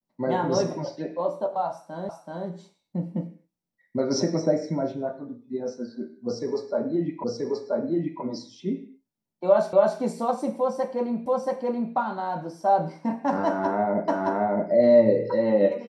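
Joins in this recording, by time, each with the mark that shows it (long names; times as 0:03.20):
0:02.09: the same again, the last 0.38 s
0:07.24: the same again, the last 0.98 s
0:09.73: the same again, the last 0.27 s
0:11.26: the same again, the last 0.68 s
0:14.08: the same again, the last 0.62 s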